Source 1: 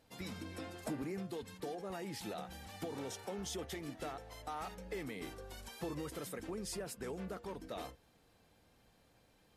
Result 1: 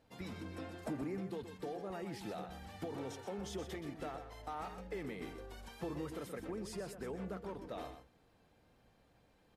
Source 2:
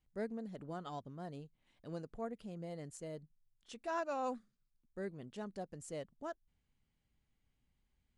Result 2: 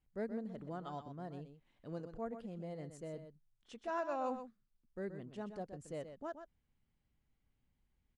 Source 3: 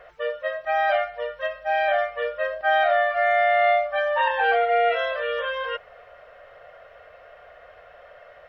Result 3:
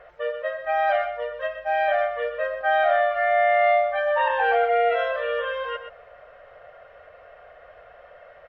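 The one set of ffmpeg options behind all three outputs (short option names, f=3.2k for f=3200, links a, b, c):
-filter_complex "[0:a]highshelf=f=3.6k:g=-9.5,asplit=2[a][b];[b]aecho=0:1:125:0.335[c];[a][c]amix=inputs=2:normalize=0"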